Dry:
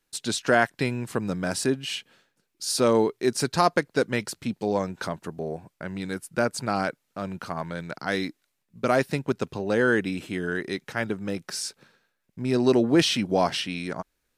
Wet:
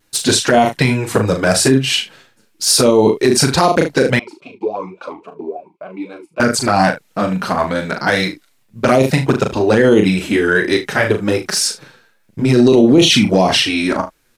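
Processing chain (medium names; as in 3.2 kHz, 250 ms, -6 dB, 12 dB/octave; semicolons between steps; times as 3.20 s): vibrato 0.54 Hz 12 cents; touch-sensitive flanger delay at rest 9.8 ms, full sweep at -17 dBFS; early reflections 38 ms -6.5 dB, 75 ms -16 dB; loudness maximiser +18.5 dB; 4.19–6.40 s: talking filter a-u 3.6 Hz; trim -1 dB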